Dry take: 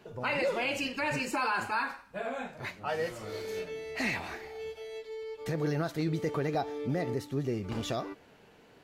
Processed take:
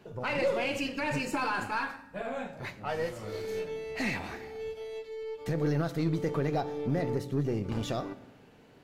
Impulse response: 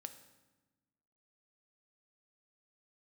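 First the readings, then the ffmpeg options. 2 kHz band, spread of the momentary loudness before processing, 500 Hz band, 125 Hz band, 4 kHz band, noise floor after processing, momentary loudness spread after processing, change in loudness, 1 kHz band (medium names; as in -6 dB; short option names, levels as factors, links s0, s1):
-1.5 dB, 11 LU, +1.5 dB, +3.0 dB, -1.5 dB, -56 dBFS, 10 LU, +0.5 dB, -0.5 dB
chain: -filter_complex "[0:a]asplit=2[s0][s1];[1:a]atrim=start_sample=2205,lowshelf=f=480:g=8.5[s2];[s1][s2]afir=irnorm=-1:irlink=0,volume=1.5[s3];[s0][s3]amix=inputs=2:normalize=0,aeval=exprs='0.251*(cos(1*acos(clip(val(0)/0.251,-1,1)))-cos(1*PI/2))+0.0112*(cos(6*acos(clip(val(0)/0.251,-1,1)))-cos(6*PI/2))':c=same,volume=0.447"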